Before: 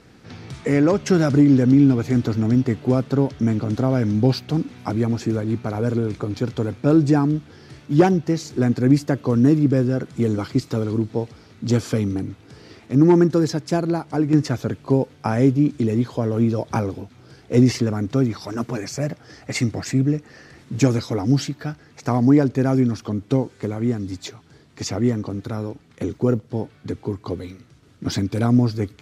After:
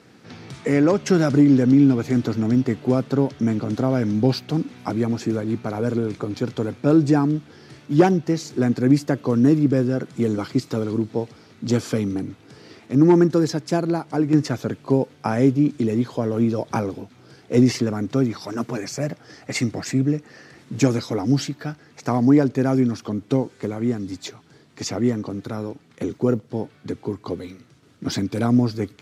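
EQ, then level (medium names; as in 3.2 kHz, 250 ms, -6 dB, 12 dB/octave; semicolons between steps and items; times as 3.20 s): high-pass 130 Hz; 0.0 dB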